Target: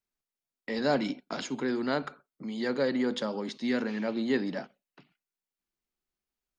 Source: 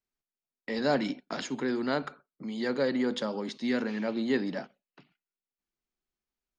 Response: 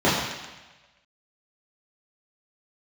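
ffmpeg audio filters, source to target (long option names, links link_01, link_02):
-filter_complex "[0:a]asettb=1/sr,asplit=3[link_01][link_02][link_03];[link_01]atrim=end=0.944[link_04];[link_02]atrim=start=0.94:end=1.64,asetpts=PTS-STARTPTS,afade=type=in:duration=0.004:curve=qsin,afade=type=out:start_time=0.696:duration=0.004:curve=qsin,bandreject=frequency=1800:width=9.1[link_05];[link_03]atrim=start=1.636[link_06];[link_04][link_05]acrossfade=duration=0.004:curve1=hsin:curve2=qsin[link_07];[link_07][link_06]acrossfade=duration=0.004:curve1=qsin:curve2=hsin"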